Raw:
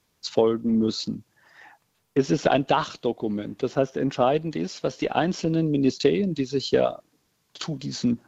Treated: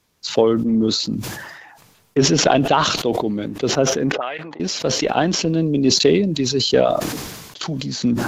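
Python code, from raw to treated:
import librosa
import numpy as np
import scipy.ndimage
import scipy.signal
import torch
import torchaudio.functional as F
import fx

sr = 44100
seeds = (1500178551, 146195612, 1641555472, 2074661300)

y = fx.auto_wah(x, sr, base_hz=400.0, top_hz=2000.0, q=3.9, full_db=-17.5, direction='up', at=(4.12, 4.6))
y = fx.sustainer(y, sr, db_per_s=39.0)
y = y * librosa.db_to_amplitude(4.0)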